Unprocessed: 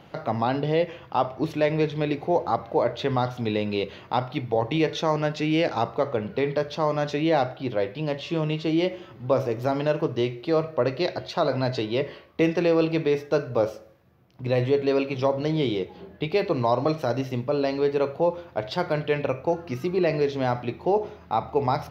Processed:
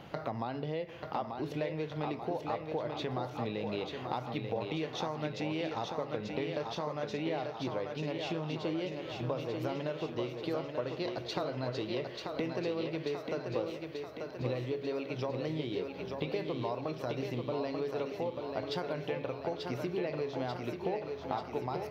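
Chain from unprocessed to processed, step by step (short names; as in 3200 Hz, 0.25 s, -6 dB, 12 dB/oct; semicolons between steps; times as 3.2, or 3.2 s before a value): compressor 6:1, threshold -34 dBFS, peak gain reduction 16.5 dB; on a send: thinning echo 0.888 s, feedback 61%, high-pass 170 Hz, level -4.5 dB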